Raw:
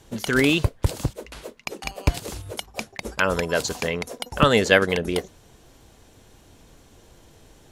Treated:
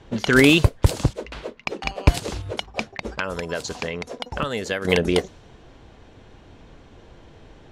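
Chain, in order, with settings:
low-pass that shuts in the quiet parts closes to 3,000 Hz, open at −15.5 dBFS
0:02.80–0:04.85: downward compressor 4 to 1, threshold −31 dBFS, peak gain reduction 17 dB
level +5 dB

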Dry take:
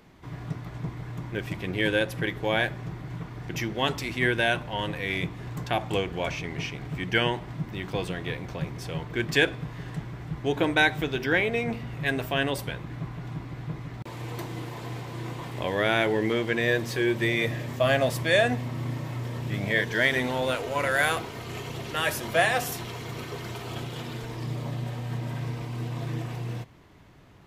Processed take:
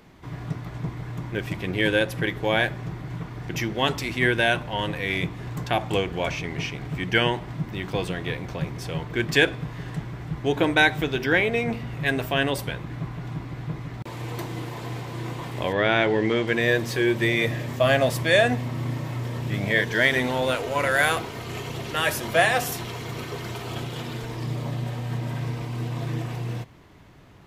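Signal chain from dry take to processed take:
0:15.72–0:16.46: low-pass filter 3,800 Hz → 7,500 Hz 12 dB per octave
level +3 dB

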